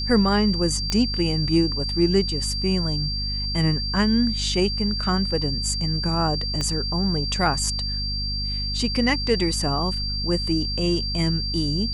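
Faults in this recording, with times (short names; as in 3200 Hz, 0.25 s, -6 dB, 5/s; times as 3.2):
hum 50 Hz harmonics 5 -29 dBFS
tone 4700 Hz -27 dBFS
0.9 pop -10 dBFS
6.61 pop -13 dBFS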